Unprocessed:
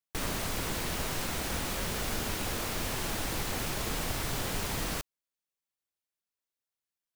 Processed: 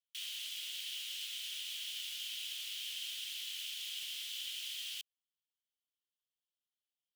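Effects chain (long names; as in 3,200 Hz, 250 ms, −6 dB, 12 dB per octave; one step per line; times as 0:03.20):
four-pole ladder high-pass 2,900 Hz, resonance 75%
level +1.5 dB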